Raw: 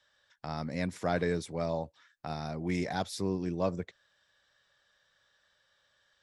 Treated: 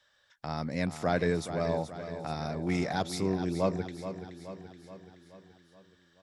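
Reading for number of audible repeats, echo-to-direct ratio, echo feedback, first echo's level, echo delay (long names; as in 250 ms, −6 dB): 5, −9.0 dB, 56%, −10.5 dB, 426 ms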